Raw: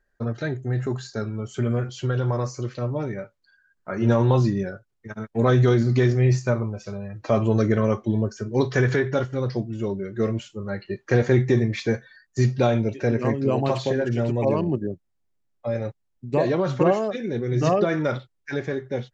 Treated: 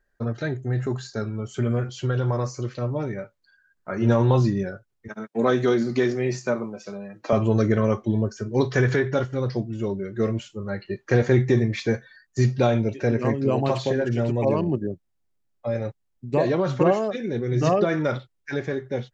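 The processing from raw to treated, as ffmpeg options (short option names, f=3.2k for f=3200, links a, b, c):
-filter_complex "[0:a]asettb=1/sr,asplit=3[a][b][c];[a]atrim=end=5.084[d];[b]atrim=start=5.08:end=7.33,asetpts=PTS-STARTPTS,afade=t=in:d=0.004:c=qsin,afade=t=out:st=2.246:d=0.004:c=qsin,highpass=f=180:w=0.5412,highpass=f=180:w=1.3066[e];[c]atrim=start=7.326[f];[d][e]acrossfade=d=0.004:c1=hsin:c2=qsin[g];[g][f]acrossfade=d=0.004:c1=qsin:c2=hsin"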